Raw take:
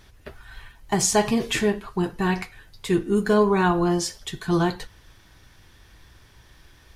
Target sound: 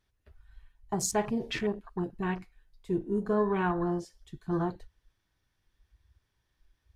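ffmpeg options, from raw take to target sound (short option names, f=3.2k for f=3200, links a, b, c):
-af "afwtdn=0.0355,volume=-8.5dB"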